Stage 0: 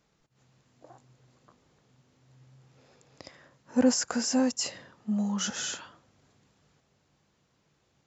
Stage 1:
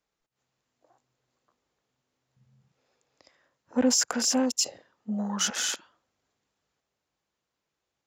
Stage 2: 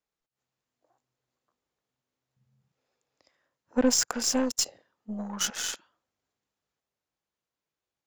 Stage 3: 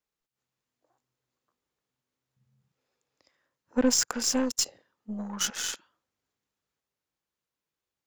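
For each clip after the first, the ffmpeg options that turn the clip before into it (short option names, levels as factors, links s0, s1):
-filter_complex "[0:a]afwtdn=0.0112,equalizer=f=130:t=o:w=2.1:g=-11.5,acrossover=split=350|3000[s0][s1][s2];[s1]acompressor=threshold=0.0178:ratio=3[s3];[s0][s3][s2]amix=inputs=3:normalize=0,volume=2"
-af "aeval=exprs='0.282*(cos(1*acos(clip(val(0)/0.282,-1,1)))-cos(1*PI/2))+0.00794*(cos(6*acos(clip(val(0)/0.282,-1,1)))-cos(6*PI/2))+0.0224*(cos(7*acos(clip(val(0)/0.282,-1,1)))-cos(7*PI/2))':c=same"
-af "equalizer=f=680:t=o:w=0.55:g=-4"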